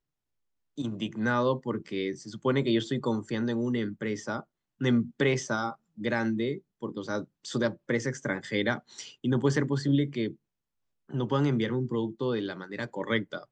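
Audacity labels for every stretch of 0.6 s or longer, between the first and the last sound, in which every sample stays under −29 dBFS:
10.280000	11.150000	silence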